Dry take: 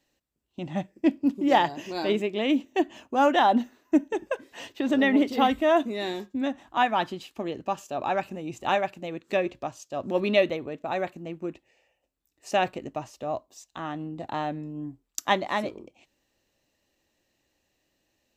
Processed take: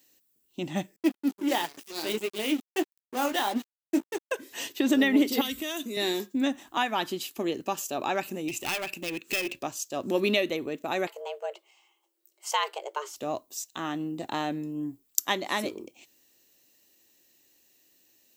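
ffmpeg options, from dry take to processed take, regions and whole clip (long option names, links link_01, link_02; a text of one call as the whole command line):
ffmpeg -i in.wav -filter_complex "[0:a]asettb=1/sr,asplit=3[link_01][link_02][link_03];[link_01]atrim=end=0.964[link_04];[link_02]atrim=start=0.96:end=4.32,asetpts=PTS-STARTPTS,afade=type=in:duration=0.004:curve=qsin,afade=type=out:start_time=3.356:duration=0.004:curve=qsin,highpass=frequency=210:poles=1,flanger=delay=6.5:depth=8.4:regen=-42:speed=1.5:shape=triangular,aeval=exprs='sgn(val(0))*max(abs(val(0))-0.00944,0)':channel_layout=same[link_05];[link_03]atrim=start=4.316[link_06];[link_04][link_05]acrossfade=duration=0.004:curve1=hsin:curve2=qsin[link_07];[link_07][link_06]acrossfade=duration=0.004:curve1=qsin:curve2=hsin,asettb=1/sr,asplit=3[link_08][link_09][link_10];[link_08]atrim=end=5.414[link_11];[link_09]atrim=start=5.41:end=5.97,asetpts=PTS-STARTPTS,afade=type=in:duration=0.004:curve=qsin,afade=type=out:start_time=0.556:duration=0.004:curve=qsin,equalizer=frequency=820:width_type=o:width=0.34:gain=-10,acrossover=split=120|3000[link_12][link_13][link_14];[link_13]acompressor=threshold=-35dB:ratio=5:attack=3.2:release=140:knee=2.83:detection=peak[link_15];[link_12][link_15][link_14]amix=inputs=3:normalize=0[link_16];[link_10]atrim=start=5.966[link_17];[link_11][link_16]acrossfade=duration=0.004:curve1=hsin:curve2=qsin[link_18];[link_18][link_17]acrossfade=duration=0.004:curve1=qsin:curve2=hsin,asettb=1/sr,asplit=3[link_19][link_20][link_21];[link_19]atrim=end=8.484[link_22];[link_20]atrim=start=8.48:end=9.59,asetpts=PTS-STARTPTS,afade=type=in:duration=0.004:curve=qsin,afade=type=out:start_time=1.106:duration=0.004:curve=qsin,equalizer=frequency=2600:width=4.6:gain=13.5,acompressor=threshold=-30dB:ratio=2:attack=3.2:release=140:knee=1:detection=peak,aeval=exprs='clip(val(0),-1,0.0188)':channel_layout=same[link_23];[link_21]atrim=start=9.586[link_24];[link_22][link_23]acrossfade=duration=0.004:curve1=hsin:curve2=qsin[link_25];[link_25][link_24]acrossfade=duration=0.004:curve1=qsin:curve2=hsin,asettb=1/sr,asplit=3[link_26][link_27][link_28];[link_26]atrim=end=11.074[link_29];[link_27]atrim=start=11.07:end=13.16,asetpts=PTS-STARTPTS,afade=type=in:duration=0.004:curve=qsin,afade=type=out:start_time=2.086:duration=0.004:curve=qsin,highshelf=frequency=7100:gain=-10.5,afreqshift=290[link_30];[link_28]atrim=start=13.156[link_31];[link_29][link_30]acrossfade=duration=0.004:curve1=hsin:curve2=qsin[link_32];[link_32][link_31]acrossfade=duration=0.004:curve1=qsin:curve2=hsin,aemphasis=mode=production:type=riaa,acompressor=threshold=-25dB:ratio=2.5,lowshelf=frequency=480:width_type=q:width=1.5:gain=6,volume=1dB" out.wav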